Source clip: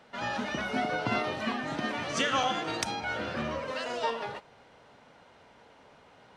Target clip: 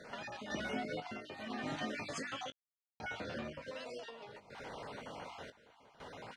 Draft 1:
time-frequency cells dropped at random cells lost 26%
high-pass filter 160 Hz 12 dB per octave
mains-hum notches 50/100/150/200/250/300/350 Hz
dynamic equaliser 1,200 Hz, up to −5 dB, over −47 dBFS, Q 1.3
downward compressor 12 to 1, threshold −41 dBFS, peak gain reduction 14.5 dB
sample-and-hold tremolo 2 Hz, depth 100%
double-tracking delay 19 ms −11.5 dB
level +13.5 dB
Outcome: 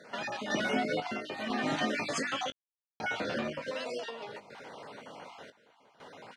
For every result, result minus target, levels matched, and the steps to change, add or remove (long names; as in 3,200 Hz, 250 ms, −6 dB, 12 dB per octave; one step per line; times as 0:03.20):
downward compressor: peak gain reduction −9 dB; 125 Hz band −5.0 dB
change: downward compressor 12 to 1, threshold −50.5 dBFS, peak gain reduction 23 dB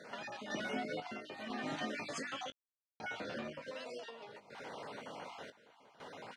125 Hz band −3.5 dB
remove: high-pass filter 160 Hz 12 dB per octave